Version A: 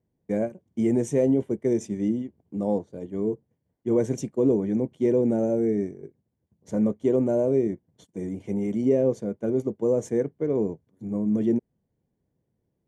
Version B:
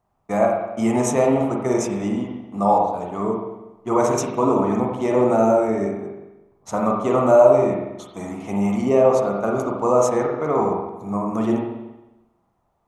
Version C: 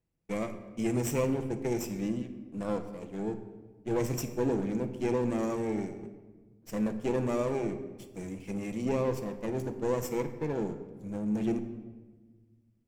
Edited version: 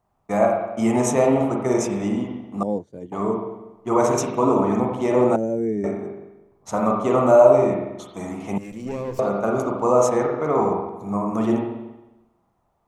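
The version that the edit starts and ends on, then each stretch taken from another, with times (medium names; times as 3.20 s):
B
2.63–3.12 s: from A
5.36–5.84 s: from A
8.58–9.19 s: from C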